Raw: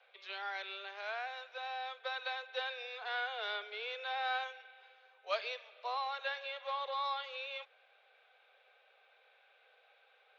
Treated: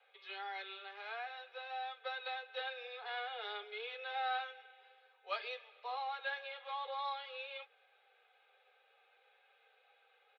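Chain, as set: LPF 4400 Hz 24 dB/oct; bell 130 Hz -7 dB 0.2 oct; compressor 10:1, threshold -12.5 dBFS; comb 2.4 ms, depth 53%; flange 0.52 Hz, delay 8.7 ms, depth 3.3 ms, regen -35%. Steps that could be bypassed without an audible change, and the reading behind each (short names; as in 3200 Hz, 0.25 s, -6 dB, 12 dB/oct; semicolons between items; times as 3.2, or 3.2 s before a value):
bell 130 Hz: input band starts at 380 Hz; compressor, threshold -12.5 dBFS: input peak -20.5 dBFS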